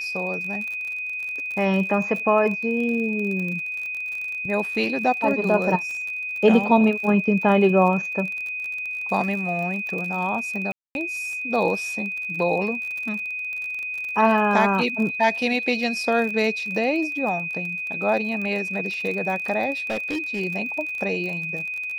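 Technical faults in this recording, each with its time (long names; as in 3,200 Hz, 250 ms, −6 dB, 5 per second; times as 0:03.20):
surface crackle 38 per second −29 dBFS
whistle 2,500 Hz −27 dBFS
0:10.72–0:10.95: drop-out 231 ms
0:19.77–0:20.41: clipping −22 dBFS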